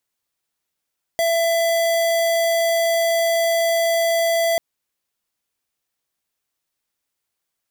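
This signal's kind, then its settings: tone square 668 Hz -18.5 dBFS 3.39 s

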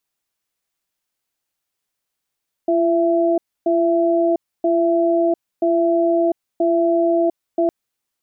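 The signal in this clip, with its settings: cadence 340 Hz, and 668 Hz, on 0.70 s, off 0.28 s, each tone -16.5 dBFS 5.01 s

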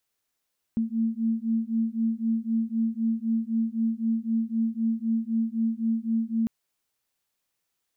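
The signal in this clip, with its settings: beating tones 224 Hz, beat 3.9 Hz, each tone -26.5 dBFS 5.70 s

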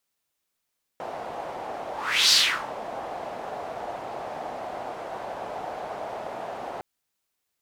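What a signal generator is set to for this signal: whoosh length 5.81 s, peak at 1.32 s, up 0.41 s, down 0.40 s, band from 710 Hz, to 4.6 kHz, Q 3, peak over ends 17 dB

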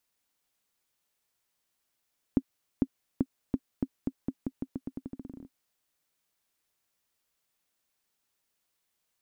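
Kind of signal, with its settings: bouncing ball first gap 0.45 s, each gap 0.86, 264 Hz, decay 52 ms -11.5 dBFS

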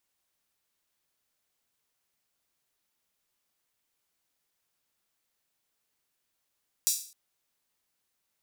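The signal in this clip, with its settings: open hi-hat length 0.26 s, high-pass 5.7 kHz, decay 0.44 s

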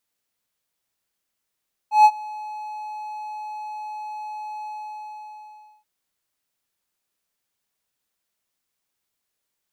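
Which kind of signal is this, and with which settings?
ADSR triangle 851 Hz, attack 139 ms, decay 56 ms, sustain -23.5 dB, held 2.74 s, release 1190 ms -5 dBFS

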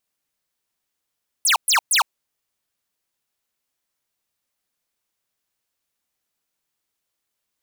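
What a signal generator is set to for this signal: burst of laser zaps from 12 kHz, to 760 Hz, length 0.11 s square, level -16 dB, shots 3, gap 0.12 s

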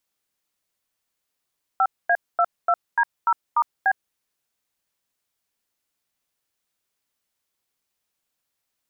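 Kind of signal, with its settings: DTMF "5A22D0*B", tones 58 ms, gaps 236 ms, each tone -18 dBFS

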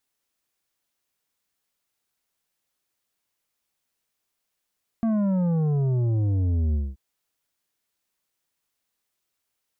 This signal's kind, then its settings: sub drop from 230 Hz, over 1.93 s, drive 8.5 dB, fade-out 0.22 s, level -21 dB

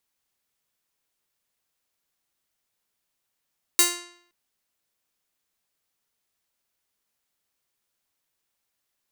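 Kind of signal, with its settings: plucked string F4, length 0.52 s, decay 0.66 s, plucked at 0.42, bright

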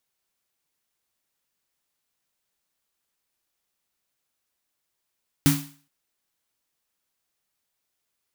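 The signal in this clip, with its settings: snare drum length 0.42 s, tones 150 Hz, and 280 Hz, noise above 720 Hz, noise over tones -6 dB, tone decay 0.39 s, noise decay 0.44 s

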